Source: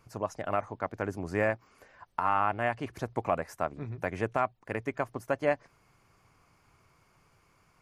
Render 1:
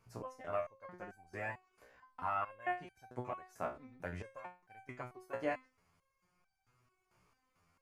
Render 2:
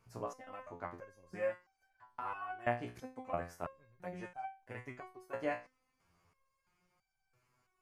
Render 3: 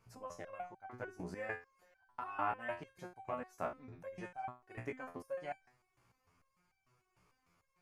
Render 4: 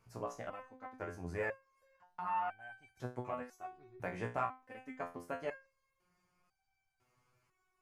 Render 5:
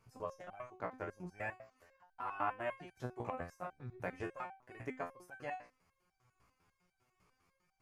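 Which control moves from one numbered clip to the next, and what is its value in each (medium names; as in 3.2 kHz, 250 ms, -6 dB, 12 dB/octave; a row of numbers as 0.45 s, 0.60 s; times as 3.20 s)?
resonator arpeggio, rate: 4.5 Hz, 3 Hz, 6.7 Hz, 2 Hz, 10 Hz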